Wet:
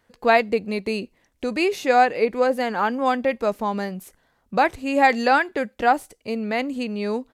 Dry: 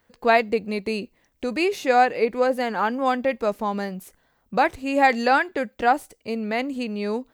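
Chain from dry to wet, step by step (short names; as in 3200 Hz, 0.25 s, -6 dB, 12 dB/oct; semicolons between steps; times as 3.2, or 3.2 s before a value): downsampling 32000 Hz; gain +1 dB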